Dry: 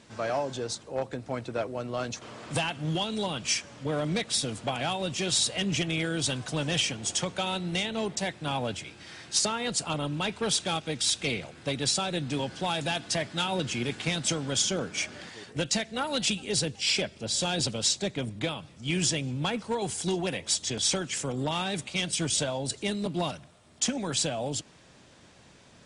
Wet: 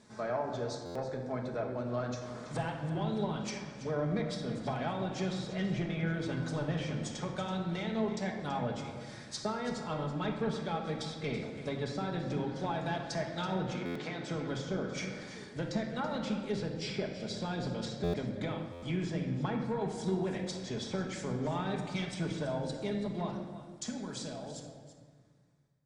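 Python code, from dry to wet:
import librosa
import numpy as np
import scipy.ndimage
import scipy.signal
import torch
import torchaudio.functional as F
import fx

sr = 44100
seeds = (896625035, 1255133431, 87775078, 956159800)

y = fx.fade_out_tail(x, sr, length_s=3.5)
y = fx.peak_eq(y, sr, hz=2800.0, db=-11.0, octaves=0.48)
y = fx.env_lowpass_down(y, sr, base_hz=2000.0, full_db=-25.5)
y = fx.bandpass_edges(y, sr, low_hz=280.0, high_hz=6500.0, at=(13.74, 14.28))
y = y + 10.0 ** (-13.0 / 20.0) * np.pad(y, (int(330 * sr / 1000.0), 0))[:len(y)]
y = fx.room_shoebox(y, sr, seeds[0], volume_m3=1300.0, walls='mixed', distance_m=1.4)
y = fx.buffer_glitch(y, sr, at_s=(0.85, 13.85, 18.03, 18.72), block=512, repeats=8)
y = y * 10.0 ** (-6.0 / 20.0)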